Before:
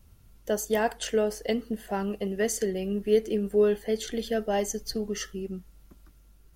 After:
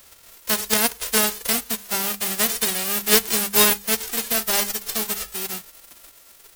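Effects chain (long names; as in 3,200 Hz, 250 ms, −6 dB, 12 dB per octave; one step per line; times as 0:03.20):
spectral envelope flattened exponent 0.1
mains-hum notches 50/100/150/200 Hz
level +5.5 dB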